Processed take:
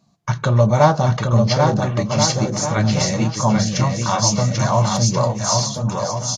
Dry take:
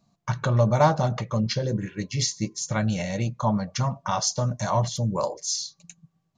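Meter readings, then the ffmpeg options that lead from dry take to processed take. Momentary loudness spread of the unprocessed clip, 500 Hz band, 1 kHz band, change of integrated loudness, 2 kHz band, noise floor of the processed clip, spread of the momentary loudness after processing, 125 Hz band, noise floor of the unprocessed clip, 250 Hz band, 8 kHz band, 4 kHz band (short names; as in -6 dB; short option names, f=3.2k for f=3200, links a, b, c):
8 LU, +8.0 dB, +7.5 dB, +7.5 dB, +7.5 dB, -32 dBFS, 5 LU, +8.5 dB, -71 dBFS, +8.0 dB, +8.5 dB, +8.5 dB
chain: -filter_complex "[0:a]asplit=2[a][b];[b]aecho=0:1:790|1382|1827|2160|2410:0.631|0.398|0.251|0.158|0.1[c];[a][c]amix=inputs=2:normalize=0,volume=6dB" -ar 48000 -c:a libvorbis -b:a 32k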